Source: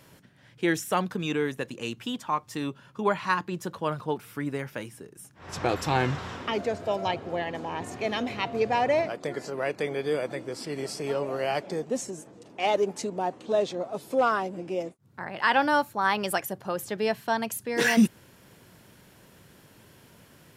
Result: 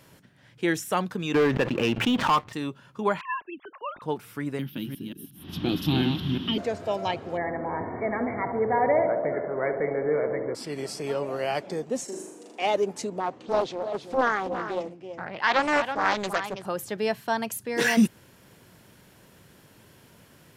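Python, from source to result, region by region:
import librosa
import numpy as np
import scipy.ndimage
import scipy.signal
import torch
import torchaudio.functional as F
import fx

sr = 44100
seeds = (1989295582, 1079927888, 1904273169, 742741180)

y = fx.chain(x, sr, fx.lowpass(hz=3000.0, slope=24),
    fx.leveller(passes=3),
    fx.pre_swell(db_per_s=79.0), at=(1.34, 2.53))
y = fx.chain(y, sr, fx.sine_speech(),
    fx.peak_eq(hz=500.0, db=-9.5, octaves=2.6), at=(3.21, 4.02))
y = fx.chain(y, sr, fx.reverse_delay(ms=179, wet_db=-4.5),
    fx.curve_eq(hz=(110.0, 180.0, 300.0, 490.0, 2200.0, 3200.0, 7700.0, 12000.0), db=(0, 9, 9, -13, -9, 10, -19, 8)), at=(4.59, 6.58))
y = fx.chain(y, sr, fx.law_mismatch(coded='mu'),
    fx.brickwall_lowpass(high_hz=2300.0),
    fx.echo_banded(ms=69, feedback_pct=82, hz=550.0, wet_db=-6.0), at=(7.37, 10.55))
y = fx.chain(y, sr, fx.highpass(hz=230.0, slope=24),
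    fx.room_flutter(wall_m=6.8, rt60_s=0.74), at=(12.04, 12.62))
y = fx.chain(y, sr, fx.lowpass(hz=6100.0, slope=12),
    fx.echo_single(ms=328, db=-9.0),
    fx.doppler_dist(depth_ms=0.52), at=(13.2, 16.66))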